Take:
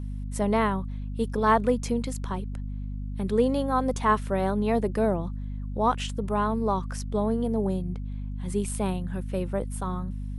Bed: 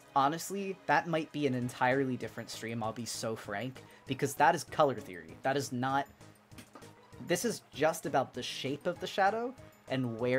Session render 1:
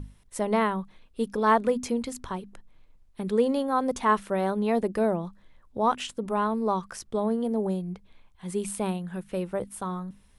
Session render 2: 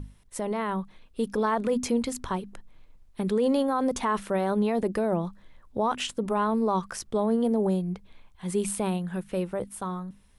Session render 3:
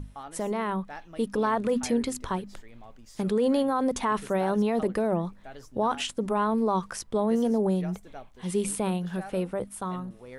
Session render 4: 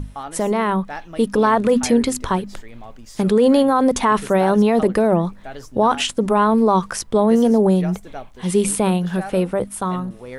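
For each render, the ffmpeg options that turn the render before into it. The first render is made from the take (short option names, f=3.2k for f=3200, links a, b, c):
-af "bandreject=f=50:t=h:w=6,bandreject=f=100:t=h:w=6,bandreject=f=150:t=h:w=6,bandreject=f=200:t=h:w=6,bandreject=f=250:t=h:w=6"
-af "alimiter=limit=-20.5dB:level=0:latency=1:release=20,dynaudnorm=f=100:g=21:m=3.5dB"
-filter_complex "[1:a]volume=-14dB[a];[0:a][a]amix=inputs=2:normalize=0"
-af "volume=10dB"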